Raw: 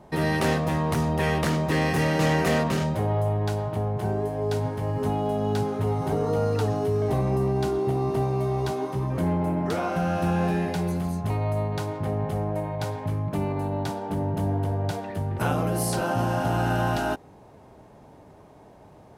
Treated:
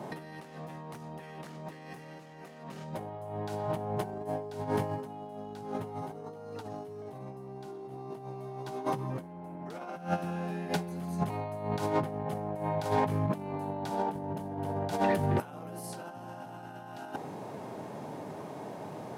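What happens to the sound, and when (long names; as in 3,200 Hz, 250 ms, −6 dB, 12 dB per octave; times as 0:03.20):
0:10.01–0:10.85: duck −20.5 dB, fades 0.16 s
whole clip: high-pass filter 130 Hz 24 dB per octave; dynamic equaliser 830 Hz, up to +4 dB, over −39 dBFS, Q 3; compressor whose output falls as the input rises −34 dBFS, ratio −0.5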